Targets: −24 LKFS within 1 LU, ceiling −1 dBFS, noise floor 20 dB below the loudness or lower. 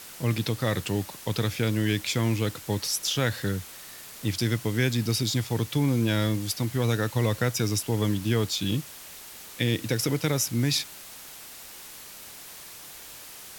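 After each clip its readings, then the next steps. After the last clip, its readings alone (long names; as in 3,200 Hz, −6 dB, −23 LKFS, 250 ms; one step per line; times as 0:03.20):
background noise floor −44 dBFS; target noise floor −47 dBFS; integrated loudness −27.0 LKFS; sample peak −10.5 dBFS; target loudness −24.0 LKFS
→ noise reduction from a noise print 6 dB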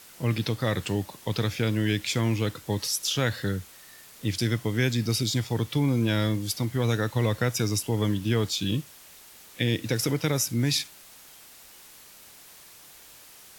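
background noise floor −50 dBFS; integrated loudness −27.0 LKFS; sample peak −10.5 dBFS; target loudness −24.0 LKFS
→ level +3 dB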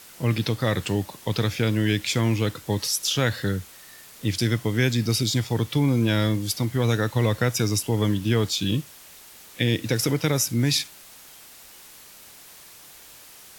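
integrated loudness −24.0 LKFS; sample peak −7.5 dBFS; background noise floor −47 dBFS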